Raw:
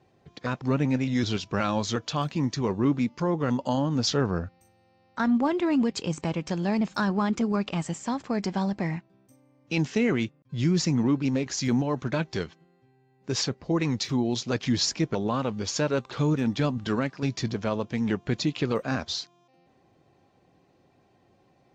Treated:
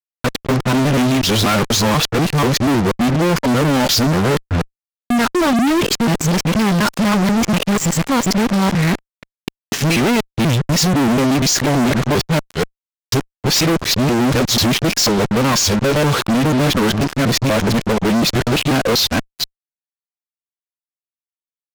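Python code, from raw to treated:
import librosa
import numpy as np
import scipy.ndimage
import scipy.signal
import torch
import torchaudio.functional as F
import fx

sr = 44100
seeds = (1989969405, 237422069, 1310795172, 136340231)

y = fx.local_reverse(x, sr, ms=243.0)
y = fx.fuzz(y, sr, gain_db=43.0, gate_db=-43.0)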